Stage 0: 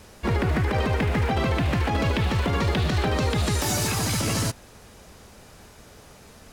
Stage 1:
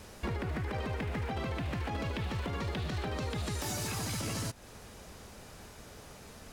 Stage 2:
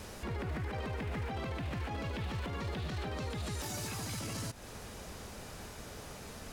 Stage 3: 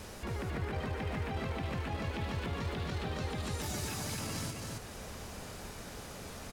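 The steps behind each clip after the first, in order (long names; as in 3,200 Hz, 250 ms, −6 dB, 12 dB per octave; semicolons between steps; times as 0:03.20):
downward compressor 6 to 1, threshold −31 dBFS, peak gain reduction 11 dB; level −2 dB
brickwall limiter −34 dBFS, peak gain reduction 9.5 dB; level +3.5 dB
single-tap delay 268 ms −3.5 dB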